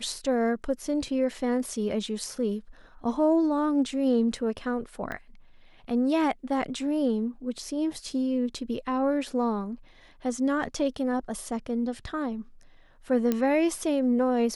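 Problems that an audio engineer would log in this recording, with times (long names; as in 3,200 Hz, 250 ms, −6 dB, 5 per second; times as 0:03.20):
0:05.12: click −21 dBFS
0:13.32: click −13 dBFS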